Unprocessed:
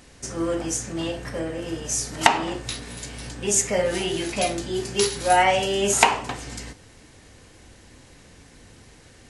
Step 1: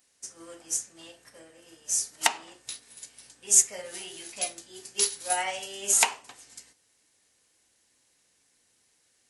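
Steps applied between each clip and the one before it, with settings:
RIAA equalisation recording
expander for the loud parts 1.5 to 1, over −35 dBFS
level −8 dB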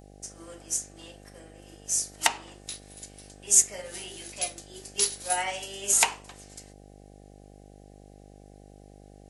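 hum with harmonics 50 Hz, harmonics 16, −51 dBFS −3 dB per octave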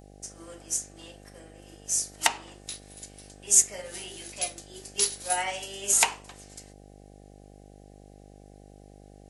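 no processing that can be heard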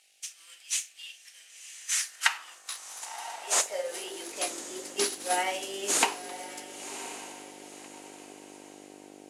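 variable-slope delta modulation 64 kbit/s
feedback delay with all-pass diffusion 1,044 ms, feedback 41%, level −12 dB
high-pass filter sweep 2,600 Hz → 300 Hz, 0:01.49–0:04.58

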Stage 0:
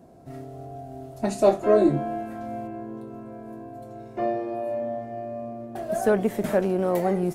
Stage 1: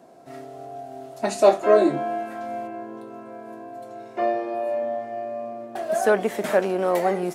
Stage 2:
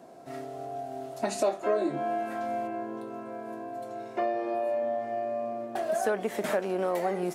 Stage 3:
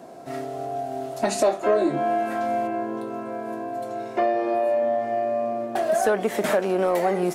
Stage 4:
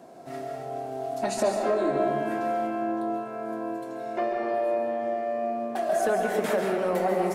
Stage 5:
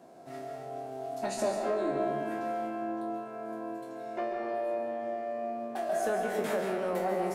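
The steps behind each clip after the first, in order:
meter weighting curve A; level +5.5 dB
downward compressor 3 to 1, threshold −27 dBFS, peak gain reduction 13 dB
soft clipping −17 dBFS, distortion −24 dB; level +7.5 dB
convolution reverb RT60 1.7 s, pre-delay 132 ms, DRR 1.5 dB; level −5.5 dB
peak hold with a decay on every bin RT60 0.34 s; level −6.5 dB

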